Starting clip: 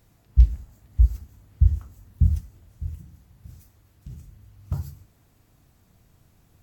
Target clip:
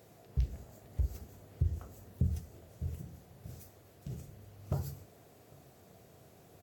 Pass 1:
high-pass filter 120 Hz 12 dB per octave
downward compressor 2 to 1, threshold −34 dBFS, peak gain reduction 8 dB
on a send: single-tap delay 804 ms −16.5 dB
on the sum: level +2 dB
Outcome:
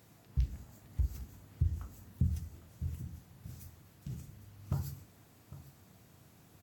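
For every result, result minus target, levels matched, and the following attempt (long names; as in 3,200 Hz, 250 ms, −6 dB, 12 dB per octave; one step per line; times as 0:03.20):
500 Hz band −8.0 dB; echo-to-direct +11.5 dB
high-pass filter 120 Hz 12 dB per octave
downward compressor 2 to 1, threshold −34 dBFS, peak gain reduction 8 dB
flat-topped bell 520 Hz +9 dB 1.2 octaves
on a send: single-tap delay 804 ms −16.5 dB
on the sum: level +2 dB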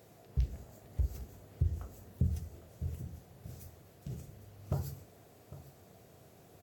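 echo-to-direct +11.5 dB
high-pass filter 120 Hz 12 dB per octave
downward compressor 2 to 1, threshold −34 dBFS, peak gain reduction 8 dB
flat-topped bell 520 Hz +9 dB 1.2 octaves
on a send: single-tap delay 804 ms −28 dB
on the sum: level +2 dB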